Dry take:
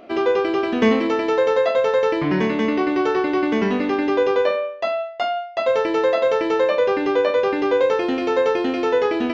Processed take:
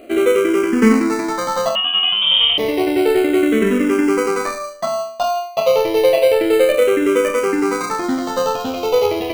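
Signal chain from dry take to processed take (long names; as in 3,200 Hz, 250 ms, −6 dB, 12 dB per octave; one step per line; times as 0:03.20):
in parallel at −5 dB: decimation without filtering 25×
0:01.75–0:02.58: on the sum: voice inversion scrambler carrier 3,400 Hz
frequency shifter mixed with the dry sound −0.3 Hz
level +3 dB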